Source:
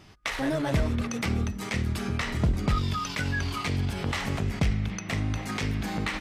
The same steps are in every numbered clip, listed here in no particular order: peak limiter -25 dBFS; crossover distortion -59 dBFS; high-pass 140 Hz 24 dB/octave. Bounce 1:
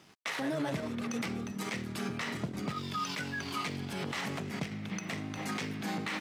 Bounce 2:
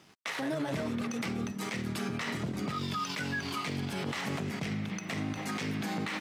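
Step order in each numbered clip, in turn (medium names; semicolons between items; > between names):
peak limiter > high-pass > crossover distortion; high-pass > peak limiter > crossover distortion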